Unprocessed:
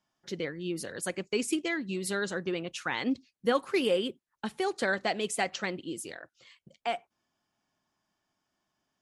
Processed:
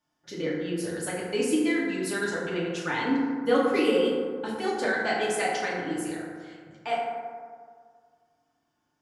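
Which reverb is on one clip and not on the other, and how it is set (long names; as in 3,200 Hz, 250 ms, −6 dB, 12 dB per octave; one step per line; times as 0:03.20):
feedback delay network reverb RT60 1.9 s, low-frequency decay 1×, high-frequency decay 0.35×, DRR −6.5 dB
level −3.5 dB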